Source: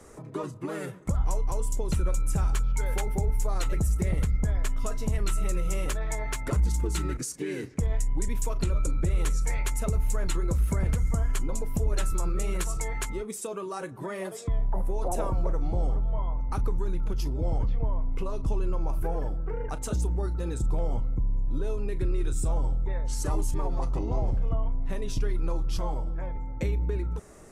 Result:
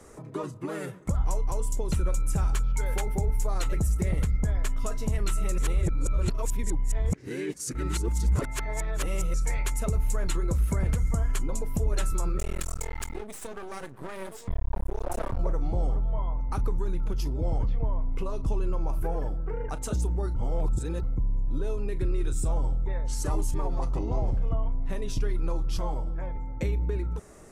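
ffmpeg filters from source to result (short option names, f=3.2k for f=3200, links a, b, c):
-filter_complex "[0:a]asettb=1/sr,asplit=3[a][b][c];[a]atrim=end=12.384[d];[b]atrim=start=12.38:end=15.39,asetpts=PTS-STARTPTS,afade=t=in:d=0.004:c=qsin,afade=t=out:st=3.006:d=0.004:c=qsin,aeval=exprs='max(val(0),0)':c=same[e];[c]atrim=start=15.386[f];[d][e]acrossfade=d=0.004:c1=hsin:c2=qsin[g];[g][f]acrossfade=d=0.004:c1=qsin:c2=hsin,asplit=5[h][i][j][k][l];[h]atrim=end=5.582[m];[i]atrim=start=5.578:end=9.342,asetpts=PTS-STARTPTS,areverse[n];[j]atrim=start=9.338:end=20.362[o];[k]atrim=start=20.358:end=21.032,asetpts=PTS-STARTPTS,areverse[p];[l]atrim=start=21.028[q];[m][n]acrossfade=d=0.004:c1=hsin:c2=hsin[r];[r][o]acrossfade=d=0.004:c1=hsin:c2=hsin[s];[s][p]acrossfade=d=0.004:c1=hsin:c2=hsin[t];[t][q]acrossfade=d=0.004:c1=hsin:c2=hsin"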